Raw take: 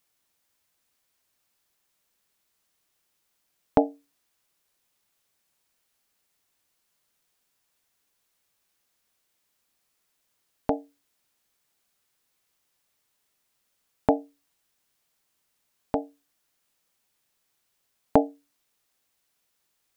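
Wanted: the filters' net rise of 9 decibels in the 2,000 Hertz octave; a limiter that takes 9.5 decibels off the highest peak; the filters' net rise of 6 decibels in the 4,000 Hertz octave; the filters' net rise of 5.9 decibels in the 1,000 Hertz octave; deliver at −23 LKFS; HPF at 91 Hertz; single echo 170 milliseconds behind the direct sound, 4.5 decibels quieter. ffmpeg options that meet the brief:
ffmpeg -i in.wav -af "highpass=91,equalizer=frequency=1000:width_type=o:gain=6.5,equalizer=frequency=2000:width_type=o:gain=8.5,equalizer=frequency=4000:width_type=o:gain=4,alimiter=limit=-8dB:level=0:latency=1,aecho=1:1:170:0.596,volume=7.5dB" out.wav

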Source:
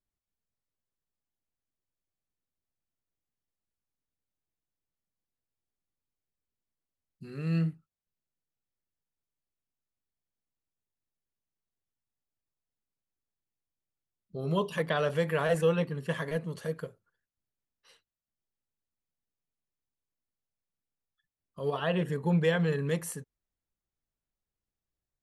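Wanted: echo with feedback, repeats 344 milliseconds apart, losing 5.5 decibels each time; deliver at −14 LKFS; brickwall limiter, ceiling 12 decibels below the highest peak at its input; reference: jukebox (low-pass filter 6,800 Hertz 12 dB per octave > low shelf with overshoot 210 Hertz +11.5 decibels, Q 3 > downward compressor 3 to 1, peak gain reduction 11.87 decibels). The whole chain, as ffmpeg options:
ffmpeg -i in.wav -af "alimiter=level_in=2.5dB:limit=-24dB:level=0:latency=1,volume=-2.5dB,lowpass=6800,lowshelf=frequency=210:width_type=q:width=3:gain=11.5,aecho=1:1:344|688|1032|1376|1720|2064|2408:0.531|0.281|0.149|0.079|0.0419|0.0222|0.0118,acompressor=threshold=-29dB:ratio=3,volume=17.5dB" out.wav

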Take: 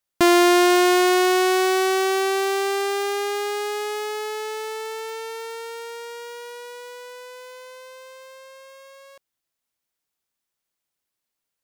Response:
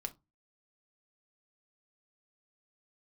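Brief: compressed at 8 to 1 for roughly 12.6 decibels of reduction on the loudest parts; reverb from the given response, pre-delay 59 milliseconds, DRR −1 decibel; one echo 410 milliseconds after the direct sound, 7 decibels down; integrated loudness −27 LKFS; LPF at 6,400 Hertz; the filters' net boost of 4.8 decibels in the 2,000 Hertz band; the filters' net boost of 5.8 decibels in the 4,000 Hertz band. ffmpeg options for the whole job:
-filter_complex "[0:a]lowpass=6400,equalizer=frequency=2000:width_type=o:gain=4.5,equalizer=frequency=4000:width_type=o:gain=6.5,acompressor=threshold=-23dB:ratio=8,aecho=1:1:410:0.447,asplit=2[link_01][link_02];[1:a]atrim=start_sample=2205,adelay=59[link_03];[link_02][link_03]afir=irnorm=-1:irlink=0,volume=2.5dB[link_04];[link_01][link_04]amix=inputs=2:normalize=0,volume=-3dB"

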